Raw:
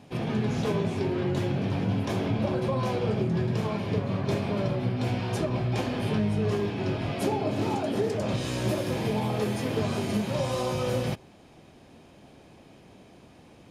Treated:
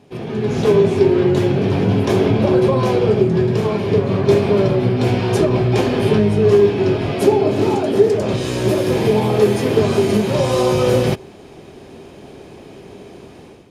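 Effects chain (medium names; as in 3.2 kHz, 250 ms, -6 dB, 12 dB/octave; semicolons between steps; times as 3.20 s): peaking EQ 400 Hz +10.5 dB 0.34 oct; level rider gain up to 11.5 dB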